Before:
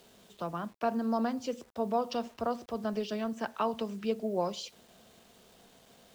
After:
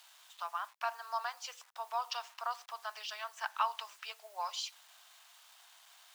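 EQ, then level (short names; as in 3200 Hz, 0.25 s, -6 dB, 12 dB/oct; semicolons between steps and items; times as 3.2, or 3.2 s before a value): steep high-pass 870 Hz 36 dB/oct; +2.5 dB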